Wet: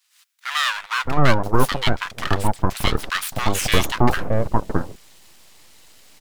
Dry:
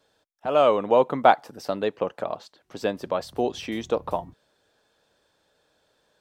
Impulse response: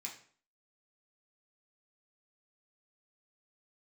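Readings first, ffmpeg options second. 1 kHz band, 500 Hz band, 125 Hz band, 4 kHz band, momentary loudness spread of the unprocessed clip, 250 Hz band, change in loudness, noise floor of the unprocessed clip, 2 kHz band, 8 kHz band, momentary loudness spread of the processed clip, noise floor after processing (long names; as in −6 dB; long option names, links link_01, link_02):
+1.0 dB, −3.5 dB, +18.5 dB, +13.0 dB, 14 LU, +6.5 dB, +2.5 dB, −70 dBFS, +11.5 dB, +18.5 dB, 7 LU, −61 dBFS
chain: -filter_complex "[0:a]highshelf=frequency=3100:gain=11,dynaudnorm=framelen=100:gausssize=3:maxgain=16.5dB,aeval=exprs='abs(val(0))':channel_layout=same,acrossover=split=1200[link_01][link_02];[link_01]adelay=620[link_03];[link_03][link_02]amix=inputs=2:normalize=0"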